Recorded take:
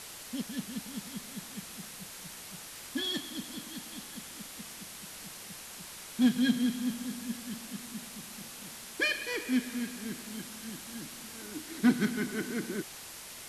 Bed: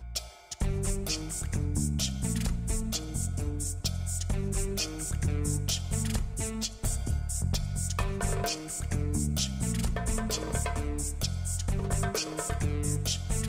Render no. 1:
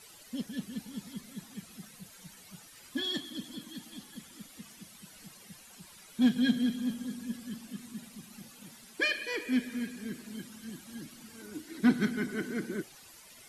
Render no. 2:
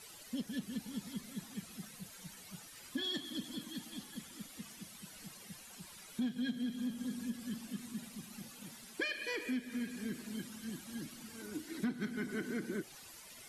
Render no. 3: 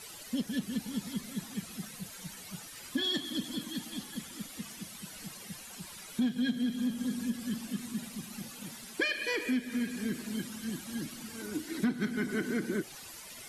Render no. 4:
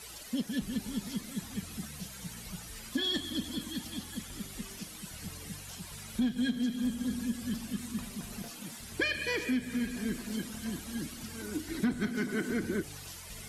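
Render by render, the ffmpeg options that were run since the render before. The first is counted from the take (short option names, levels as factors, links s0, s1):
-af "afftdn=nr=13:nf=-46"
-af "acompressor=threshold=0.0178:ratio=5"
-af "volume=2.11"
-filter_complex "[1:a]volume=0.106[s0];[0:a][s0]amix=inputs=2:normalize=0"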